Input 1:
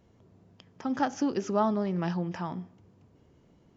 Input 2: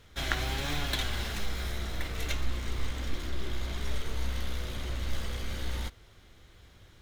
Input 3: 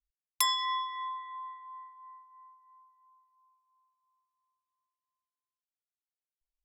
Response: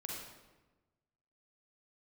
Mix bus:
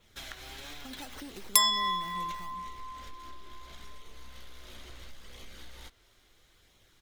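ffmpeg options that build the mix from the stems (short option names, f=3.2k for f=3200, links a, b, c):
-filter_complex "[0:a]bass=f=250:g=1,treble=f=4k:g=14,acrusher=samples=9:mix=1:aa=0.000001:lfo=1:lforange=9:lforate=2.2,volume=-9dB[a];[1:a]equalizer=f=83:t=o:w=2.5:g=-9,flanger=delay=0.3:depth=2.9:regen=-63:speed=0.74:shape=sinusoidal,adynamicequalizer=threshold=0.00126:dfrequency=5700:dqfactor=0.7:tfrequency=5700:tqfactor=0.7:attack=5:release=100:ratio=0.375:range=2:mode=cutabove:tftype=highshelf,volume=-2.5dB[b];[2:a]adelay=1150,volume=1dB[c];[a][b]amix=inputs=2:normalize=0,acompressor=threshold=-43dB:ratio=4,volume=0dB[d];[c][d]amix=inputs=2:normalize=0,highshelf=f=3.9k:g=7.5"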